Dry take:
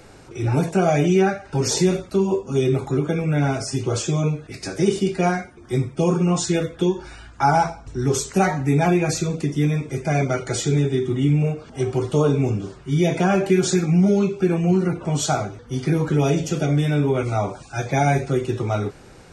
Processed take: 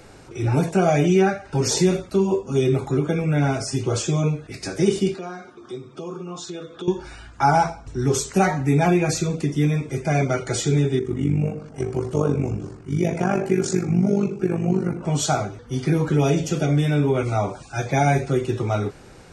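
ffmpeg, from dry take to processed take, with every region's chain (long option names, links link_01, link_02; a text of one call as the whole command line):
ffmpeg -i in.wav -filter_complex "[0:a]asettb=1/sr,asplit=3[link_01][link_02][link_03];[link_01]atrim=end=5.144[link_04];[link_02]atrim=start=5.14:end=6.88,asetpts=PTS-STARTPTS,afade=type=in:duration=0.004:curve=qsin,afade=type=out:start_time=1.736:duration=0.004:curve=qsin,acompressor=threshold=-37dB:ratio=2.5:attack=3.2:release=140:knee=1:detection=peak,highpass=180,equalizer=frequency=380:width_type=q:width=4:gain=5,equalizer=frequency=1200:width_type=q:width=4:gain=9,equalizer=frequency=2000:width_type=q:width=4:gain=-8,equalizer=frequency=3700:width_type=q:width=4:gain=7,lowpass=frequency=7600:width=0.5412,lowpass=frequency=7600:width=1.3066[link_05];[link_03]atrim=start=6.876[link_06];[link_04][link_05]acrossfade=duration=0.004:curve1=hsin:curve2=qsin[link_07];[link_07][link_06]acrossfade=duration=0.004:curve1=qsin:curve2=hsin,asettb=1/sr,asplit=3[link_08][link_09][link_10];[link_08]atrim=end=10.994[link_11];[link_09]atrim=start=10.99:end=15.04,asetpts=PTS-STARTPTS,afade=type=in:duration=0.004:curve=qsin,afade=type=out:start_time=4.046:duration=0.004:curve=qsin,equalizer=frequency=3500:width_type=o:width=0.52:gain=-10,tremolo=f=49:d=0.75,asplit=2[link_12][link_13];[link_13]adelay=94,lowpass=frequency=840:poles=1,volume=-12dB,asplit=2[link_14][link_15];[link_15]adelay=94,lowpass=frequency=840:poles=1,volume=0.54,asplit=2[link_16][link_17];[link_17]adelay=94,lowpass=frequency=840:poles=1,volume=0.54,asplit=2[link_18][link_19];[link_19]adelay=94,lowpass=frequency=840:poles=1,volume=0.54,asplit=2[link_20][link_21];[link_21]adelay=94,lowpass=frequency=840:poles=1,volume=0.54,asplit=2[link_22][link_23];[link_23]adelay=94,lowpass=frequency=840:poles=1,volume=0.54[link_24];[link_12][link_14][link_16][link_18][link_20][link_22][link_24]amix=inputs=7:normalize=0,atrim=end_sample=178605[link_25];[link_10]atrim=start=15.036[link_26];[link_11][link_25]acrossfade=duration=0.004:curve1=hsin:curve2=qsin[link_27];[link_27][link_26]acrossfade=duration=0.004:curve1=qsin:curve2=hsin" out.wav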